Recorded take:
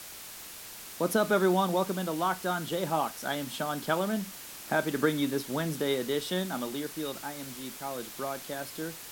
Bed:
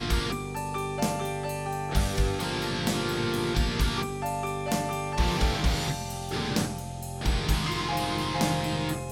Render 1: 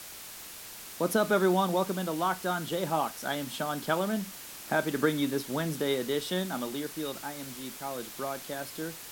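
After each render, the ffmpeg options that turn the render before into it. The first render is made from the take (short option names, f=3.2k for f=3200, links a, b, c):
-af anull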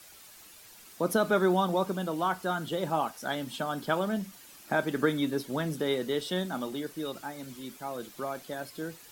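-af "afftdn=nr=10:nf=-45"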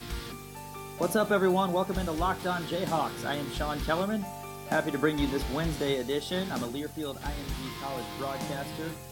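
-filter_complex "[1:a]volume=-10.5dB[a];[0:a][a]amix=inputs=2:normalize=0"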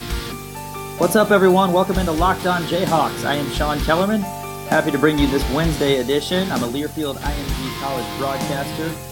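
-af "volume=11.5dB,alimiter=limit=-3dB:level=0:latency=1"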